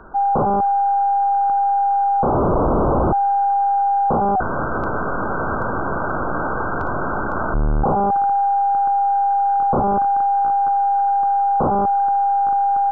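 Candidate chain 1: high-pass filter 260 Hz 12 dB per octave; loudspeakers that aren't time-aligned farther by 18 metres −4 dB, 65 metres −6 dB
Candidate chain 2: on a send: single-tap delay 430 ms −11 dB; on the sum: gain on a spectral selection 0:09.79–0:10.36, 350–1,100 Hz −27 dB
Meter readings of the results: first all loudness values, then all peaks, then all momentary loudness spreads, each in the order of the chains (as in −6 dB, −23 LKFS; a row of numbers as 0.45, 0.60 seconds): −16.5, −17.0 LKFS; −5.5, −10.5 dBFS; 6, 8 LU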